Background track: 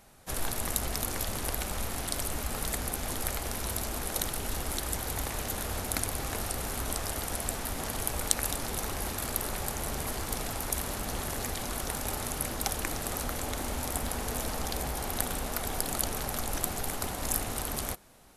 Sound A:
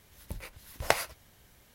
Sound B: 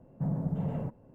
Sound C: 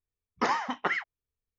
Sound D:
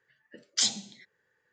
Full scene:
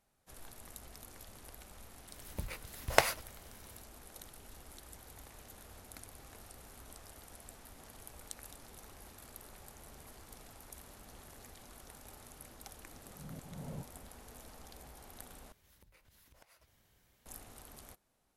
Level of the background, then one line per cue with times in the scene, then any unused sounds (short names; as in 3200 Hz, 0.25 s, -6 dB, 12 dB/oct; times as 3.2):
background track -20 dB
2.08 add A
12.93 add B -4.5 dB + auto swell 0.621 s
15.52 replace with A -10.5 dB + compressor 8:1, threshold -50 dBFS
not used: C, D